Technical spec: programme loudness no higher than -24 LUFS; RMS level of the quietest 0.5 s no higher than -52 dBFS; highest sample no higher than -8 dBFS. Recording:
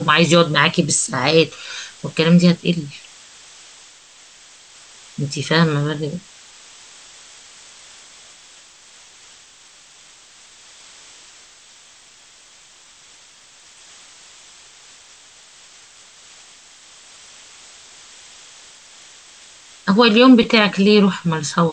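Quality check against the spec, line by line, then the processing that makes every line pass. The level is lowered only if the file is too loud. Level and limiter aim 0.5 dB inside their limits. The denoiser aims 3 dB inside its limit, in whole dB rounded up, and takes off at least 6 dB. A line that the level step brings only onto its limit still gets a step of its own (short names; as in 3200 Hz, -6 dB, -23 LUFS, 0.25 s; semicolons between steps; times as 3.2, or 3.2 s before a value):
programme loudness -15.5 LUFS: fail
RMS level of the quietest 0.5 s -47 dBFS: fail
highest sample -1.5 dBFS: fail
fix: gain -9 dB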